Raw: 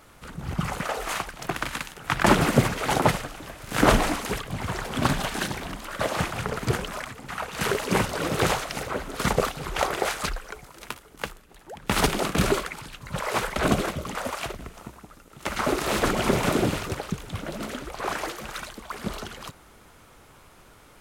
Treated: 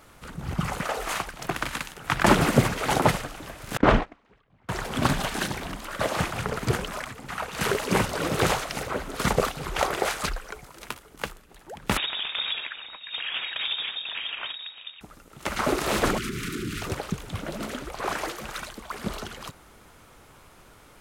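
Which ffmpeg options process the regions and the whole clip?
-filter_complex "[0:a]asettb=1/sr,asplit=3[s0][s1][s2];[s0]atrim=end=3.774[s3];[s1]atrim=start=3.77:end=4.69,asetpts=PTS-STARTPTS,afade=t=in:d=0.004:c=qsin,afade=t=out:st=0.916:d=0.004:c=qsin,lowpass=2800,agate=range=0.0316:threshold=0.0794:ratio=16:release=100:detection=peak[s4];[s2]atrim=start=4.686[s5];[s3][s4]acrossfade=d=0.004:c1=hsin:c2=qsin[s6];[s6][s5]acrossfade=d=0.004:c1=qsin:c2=hsin,asettb=1/sr,asplit=3[s7][s8][s9];[s7]atrim=end=11.974[s10];[s8]atrim=start=11.97:end=15.01,asetpts=PTS-STARTPTS,afade=t=in:d=0.004:c=qsin,afade=t=out:st=3.036:d=0.004:c=qsin,lowpass=f=3200:t=q:w=0.5098,lowpass=f=3200:t=q:w=0.6013,lowpass=f=3200:t=q:w=0.9,lowpass=f=3200:t=q:w=2.563,afreqshift=-3800,acompressor=threshold=0.0398:ratio=2.5:attack=3.2:release=140:knee=1:detection=peak[s11];[s9]atrim=start=15.006[s12];[s10][s11]acrossfade=d=0.004:c1=hsin:c2=qsin[s13];[s13][s12]acrossfade=d=0.004:c1=qsin:c2=hsin,asettb=1/sr,asplit=3[s14][s15][s16];[s14]atrim=end=16.184[s17];[s15]atrim=start=16.18:end=16.82,asetpts=PTS-STARTPTS,afade=t=in:d=0.004:c=qsin,afade=t=out:st=0.636:d=0.004:c=qsin,acompressor=threshold=0.0631:ratio=10:attack=3.2:release=140:knee=1:detection=peak,volume=17.8,asoftclip=hard,volume=0.0562,asuperstop=centerf=710:order=8:qfactor=0.8[s18];[s16]atrim=start=16.816[s19];[s17][s18]acrossfade=d=0.004:c1=hsin:c2=qsin[s20];[s20][s19]acrossfade=d=0.004:c1=qsin:c2=hsin"

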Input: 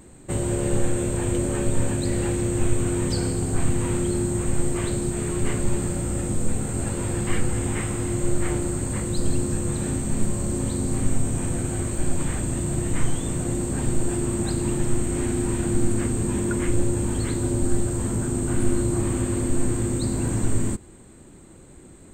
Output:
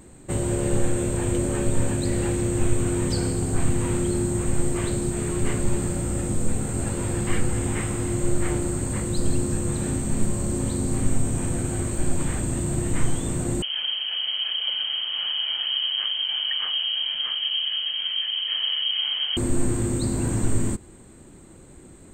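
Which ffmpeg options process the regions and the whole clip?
-filter_complex "[0:a]asettb=1/sr,asplit=3[s0][s1][s2];[s0]atrim=end=13.624[s3];[s1]atrim=start=13.62:end=19.37,asetpts=PTS-STARTPTS,afade=t=in:d=0.004:c=qsin,afade=t=out:st=5.746:d=0.004:c=qsin,highpass=f=78:w=0.5412,highpass=f=78:w=1.3066,equalizer=f=520:t=o:w=2.6:g=-3,lowpass=f=2800:t=q:w=0.5098,lowpass=f=2800:t=q:w=0.6013,lowpass=f=2800:t=q:w=0.9,lowpass=f=2800:t=q:w=2.563,afreqshift=-3300[s4];[s2]atrim=start=19.366[s5];[s3][s4]acrossfade=d=0.004:c1=hsin:c2=qsin[s6];[s6][s5]acrossfade=d=0.004:c1=qsin:c2=hsin"

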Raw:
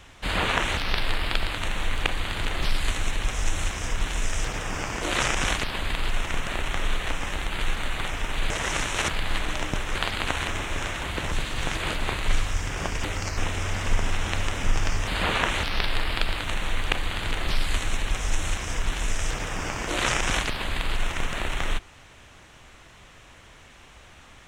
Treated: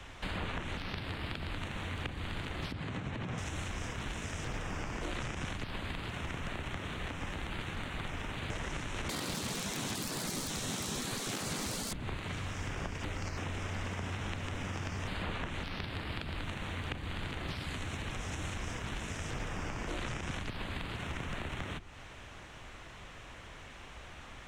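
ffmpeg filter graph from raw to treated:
-filter_complex "[0:a]asettb=1/sr,asplit=3[s0][s1][s2];[s0]atrim=end=2.724[s3];[s1]atrim=start=2.72:end=3.38,asetpts=PTS-STARTPTS,afade=t=in:d=0.004:c=qsin,afade=t=out:st=0.656:d=0.004:c=qsin,aemphasis=mode=reproduction:type=riaa,acompressor=threshold=0.447:ratio=4:attack=3.2:release=140:knee=1:detection=peak[s4];[s2]atrim=start=3.376[s5];[s3][s4]acrossfade=d=0.004:c1=hsin:c2=qsin[s6];[s6][s5]acrossfade=d=0.004:c1=qsin:c2=hsin,asettb=1/sr,asplit=3[s7][s8][s9];[s7]atrim=end=9.094[s10];[s8]atrim=start=9.09:end=11.93,asetpts=PTS-STARTPTS,afade=t=in:d=0.004:c=qsin,afade=t=out:st=2.836:d=0.004:c=qsin,highshelf=f=3500:g=10.5,aeval=exprs='0.75*sin(PI/2*7.08*val(0)/0.75)':c=same,aecho=1:1:79:0.0841,atrim=end_sample=125244[s11];[s9]atrim=start=11.926[s12];[s10][s11]acrossfade=d=0.004:c1=hsin:c2=qsin[s13];[s13][s12]acrossfade=d=0.004:c1=qsin:c2=hsin,afftfilt=real='re*lt(hypot(re,im),0.398)':imag='im*lt(hypot(re,im),0.398)':win_size=1024:overlap=0.75,highshelf=f=5200:g=-7.5,acrossover=split=150|300[s14][s15][s16];[s14]acompressor=threshold=0.01:ratio=4[s17];[s15]acompressor=threshold=0.00447:ratio=4[s18];[s16]acompressor=threshold=0.00708:ratio=4[s19];[s17][s18][s19]amix=inputs=3:normalize=0,volume=1.12"

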